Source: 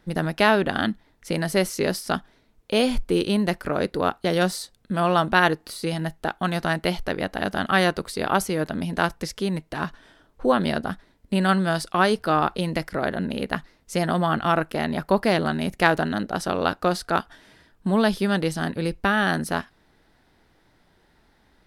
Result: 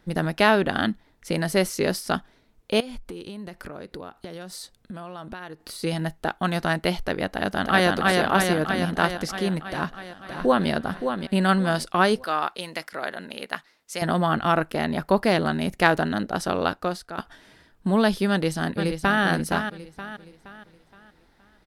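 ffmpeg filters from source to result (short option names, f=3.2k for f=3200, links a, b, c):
-filter_complex "[0:a]asettb=1/sr,asplit=3[a][b][c];[a]atrim=end=2.804[d];[b]atrim=start=2.8:end=5.8,asetpts=PTS-STARTPTS,afade=t=in:d=0.004:c=qsin,afade=t=out:st=2.996:d=0.004:c=qsin,acompressor=threshold=-33dB:ratio=10:attack=3.2:release=140:knee=1:detection=peak[e];[c]atrim=start=5.796[f];[d][e]acrossfade=d=0.004:c1=hsin:c2=qsin[g];[g][f]acrossfade=d=0.004:c1=qsin:c2=hsin,asplit=2[h][i];[i]afade=t=in:st=7.29:d=0.01,afade=t=out:st=7.89:d=0.01,aecho=0:1:320|640|960|1280|1600|1920|2240|2560|2880|3200|3520|3840:0.841395|0.588977|0.412284|0.288599|0.202019|0.141413|0.0989893|0.0692925|0.0485048|0.0339533|0.0237673|0.0166371[j];[h][j]amix=inputs=2:normalize=0,asplit=2[k][l];[l]afade=t=in:st=9.62:d=0.01,afade=t=out:st=10.69:d=0.01,aecho=0:1:570|1140|1710|2280:0.446684|0.134005|0.0402015|0.0120605[m];[k][m]amix=inputs=2:normalize=0,asettb=1/sr,asplit=3[n][o][p];[n]atrim=end=12.244[q];[o]atrim=start=12.24:end=14.02,asetpts=PTS-STARTPTS,afade=t=in:d=0.004:c=qsin,afade=t=out:st=1.776:d=0.004:c=qsin,highpass=f=1.1k:p=1[r];[p]atrim=start=14.016[s];[q][r]acrossfade=d=0.004:c1=hsin:c2=qsin[t];[t][s]acrossfade=d=0.004:c1=qsin:c2=hsin,asplit=2[u][v];[v]afade=t=in:st=18.3:d=0.01,afade=t=out:st=19.22:d=0.01,aecho=0:1:470|940|1410|1880|2350:0.421697|0.168679|0.0674714|0.0269886|0.0107954[w];[u][w]amix=inputs=2:normalize=0,asplit=2[x][y];[x]atrim=end=17.18,asetpts=PTS-STARTPTS,afade=t=out:st=16.57:d=0.61:silence=0.16788[z];[y]atrim=start=17.18,asetpts=PTS-STARTPTS,afade=t=in:d=0.004:c=hsin:silence=0.16788[aa];[z][aa]concat=n=2:v=0:a=1"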